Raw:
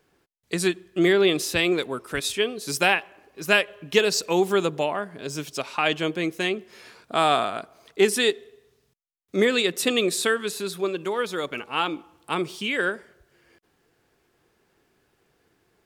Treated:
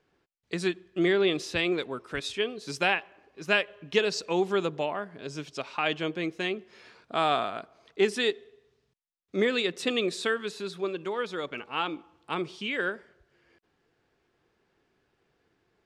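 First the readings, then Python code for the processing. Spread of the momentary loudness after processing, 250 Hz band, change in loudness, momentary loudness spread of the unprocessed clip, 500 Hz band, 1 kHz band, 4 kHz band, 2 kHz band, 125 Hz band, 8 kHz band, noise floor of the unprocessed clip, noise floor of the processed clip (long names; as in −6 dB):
11 LU, −5.0 dB, −5.5 dB, 10 LU, −5.0 dB, −5.0 dB, −6.0 dB, −5.0 dB, −5.0 dB, −13.0 dB, −69 dBFS, −74 dBFS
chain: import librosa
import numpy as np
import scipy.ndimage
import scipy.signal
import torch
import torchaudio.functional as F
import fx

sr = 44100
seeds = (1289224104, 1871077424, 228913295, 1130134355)

y = scipy.signal.sosfilt(scipy.signal.butter(2, 5200.0, 'lowpass', fs=sr, output='sos'), x)
y = y * librosa.db_to_amplitude(-5.0)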